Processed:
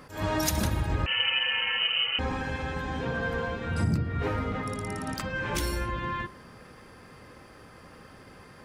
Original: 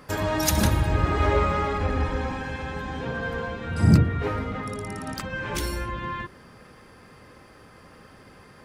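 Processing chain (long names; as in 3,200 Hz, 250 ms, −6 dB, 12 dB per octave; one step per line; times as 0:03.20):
hum removal 208.3 Hz, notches 25
0:01.06–0:02.19: voice inversion scrambler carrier 3,000 Hz
downward compressor 6 to 1, threshold −23 dBFS, peak gain reduction 12 dB
level that may rise only so fast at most 140 dB per second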